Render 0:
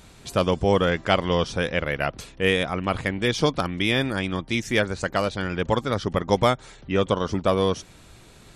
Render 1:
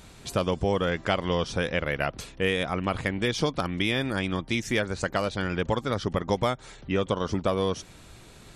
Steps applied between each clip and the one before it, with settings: compression 2.5:1, threshold -23 dBFS, peak gain reduction 7 dB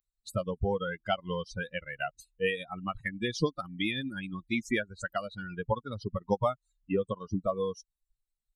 expander on every frequency bin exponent 3; treble shelf 4.1 kHz -6.5 dB; trim +3 dB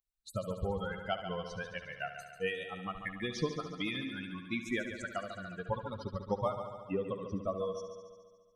multi-head delay 71 ms, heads first and second, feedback 62%, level -11.5 dB; trim -5.5 dB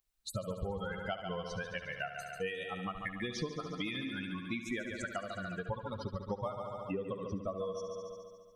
compression 3:1, threshold -46 dBFS, peak gain reduction 14 dB; trim +8 dB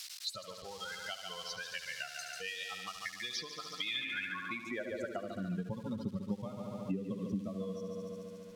zero-crossing glitches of -41.5 dBFS; band-pass sweep 4.8 kHz -> 210 Hz, 3.76–5.53 s; three bands compressed up and down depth 70%; trim +9.5 dB

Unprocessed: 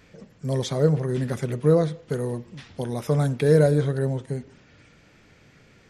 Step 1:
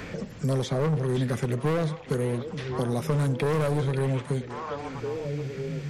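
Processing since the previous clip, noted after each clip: overload inside the chain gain 21 dB; repeats whose band climbs or falls 538 ms, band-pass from 2.6 kHz, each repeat -1.4 oct, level -7 dB; three bands compressed up and down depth 70%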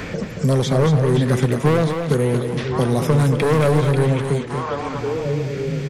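delay 228 ms -7 dB; trim +8.5 dB

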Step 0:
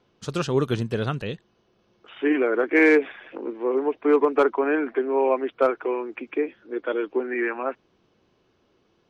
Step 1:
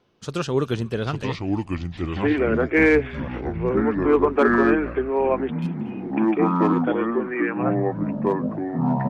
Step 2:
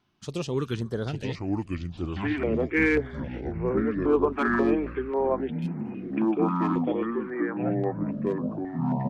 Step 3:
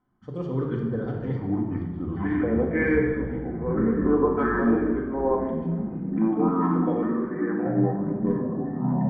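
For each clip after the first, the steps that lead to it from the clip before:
ever faster or slower copies 762 ms, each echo -5 st, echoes 3; spectral replace 5.55–6.06 s, 220–2400 Hz both; frequency-shifting echo 239 ms, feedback 34%, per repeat -65 Hz, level -23 dB
step-sequenced notch 3.7 Hz 490–3400 Hz; trim -4 dB
Savitzky-Golay filter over 41 samples; simulated room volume 1300 m³, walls mixed, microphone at 2 m; tape noise reduction on one side only decoder only; trim -2.5 dB

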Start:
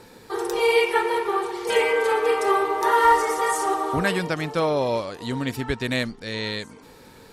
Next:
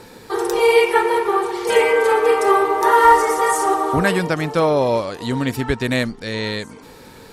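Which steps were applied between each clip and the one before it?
dynamic bell 3.5 kHz, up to -4 dB, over -37 dBFS, Q 0.82; trim +6 dB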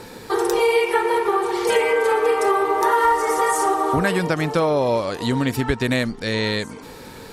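compression 3:1, threshold -20 dBFS, peak gain reduction 10.5 dB; trim +3 dB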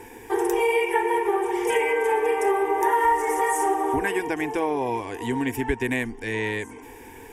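static phaser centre 860 Hz, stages 8; trim -1.5 dB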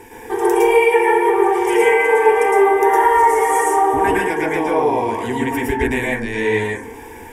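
reverberation RT60 0.45 s, pre-delay 103 ms, DRR -4.5 dB; trim +2 dB

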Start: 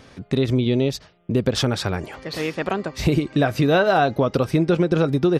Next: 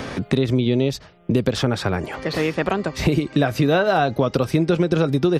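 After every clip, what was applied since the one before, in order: three bands compressed up and down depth 70%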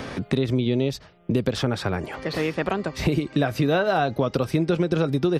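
peaking EQ 6.8 kHz -2 dB 0.36 oct; trim -3.5 dB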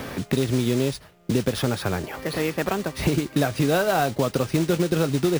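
modulation noise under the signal 16 dB; careless resampling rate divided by 3×, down none, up hold

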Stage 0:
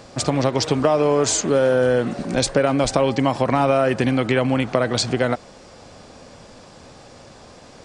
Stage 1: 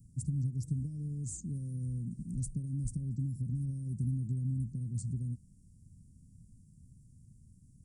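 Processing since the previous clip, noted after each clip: inverse Chebyshev band-stop 750–2700 Hz, stop band 80 dB; trim -6 dB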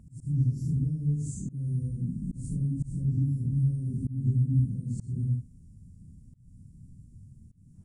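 phase randomisation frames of 200 ms; treble shelf 2.9 kHz -10.5 dB; slow attack 207 ms; trim +8 dB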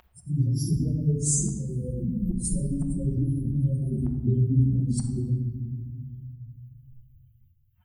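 expander on every frequency bin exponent 3; simulated room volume 1200 m³, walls mixed, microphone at 0.97 m; spectrum-flattening compressor 2:1; trim +4.5 dB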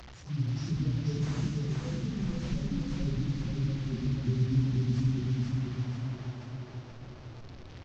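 one-bit delta coder 32 kbps, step -35 dBFS; feedback delay 485 ms, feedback 51%, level -3 dB; trim -7 dB

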